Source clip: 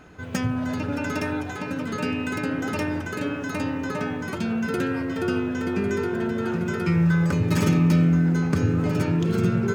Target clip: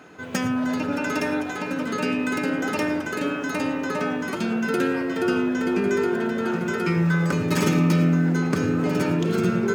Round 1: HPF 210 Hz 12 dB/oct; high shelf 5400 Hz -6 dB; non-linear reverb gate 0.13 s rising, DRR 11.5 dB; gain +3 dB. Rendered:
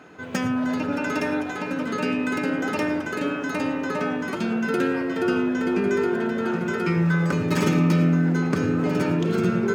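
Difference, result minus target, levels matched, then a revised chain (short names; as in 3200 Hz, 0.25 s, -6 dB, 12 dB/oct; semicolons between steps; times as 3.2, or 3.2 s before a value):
8000 Hz band -3.5 dB
HPF 210 Hz 12 dB/oct; non-linear reverb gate 0.13 s rising, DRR 11.5 dB; gain +3 dB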